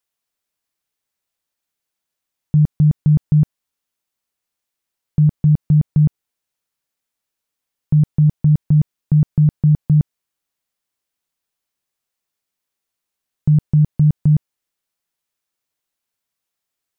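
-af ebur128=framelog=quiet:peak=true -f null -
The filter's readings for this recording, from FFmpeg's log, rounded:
Integrated loudness:
  I:         -16.5 LUFS
  Threshold: -26.5 LUFS
Loudness range:
  LRA:         5.9 LU
  Threshold: -39.9 LUFS
  LRA low:   -23.2 LUFS
  LRA high:  -17.2 LUFS
True peak:
  Peak:       -7.8 dBFS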